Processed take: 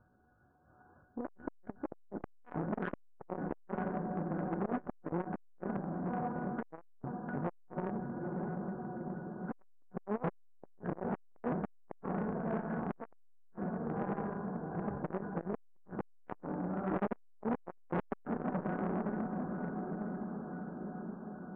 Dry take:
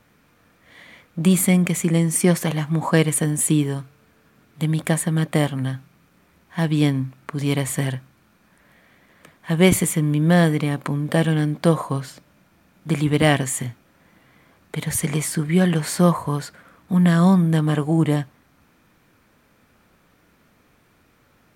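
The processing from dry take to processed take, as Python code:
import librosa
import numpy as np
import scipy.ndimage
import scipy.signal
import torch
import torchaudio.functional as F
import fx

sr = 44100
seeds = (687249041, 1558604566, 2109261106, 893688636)

p1 = fx.pitch_ramps(x, sr, semitones=9.5, every_ms=320)
p2 = p1 + fx.echo_diffused(p1, sr, ms=883, feedback_pct=63, wet_db=-5.5, dry=0)
p3 = fx.cheby_harmonics(p2, sr, harmonics=(5, 7, 8), levels_db=(-40, -23, -36), full_scale_db=-1.0)
p4 = np.clip(p3, -10.0 ** (-18.0 / 20.0), 10.0 ** (-18.0 / 20.0))
p5 = fx.brickwall_lowpass(p4, sr, high_hz=1700.0)
p6 = fx.peak_eq(p5, sr, hz=71.0, db=8.5, octaves=1.9)
p7 = fx.comb_fb(p6, sr, f0_hz=730.0, decay_s=0.4, harmonics='all', damping=0.0, mix_pct=90)
p8 = fx.transformer_sat(p7, sr, knee_hz=1300.0)
y = p8 * 10.0 ** (12.5 / 20.0)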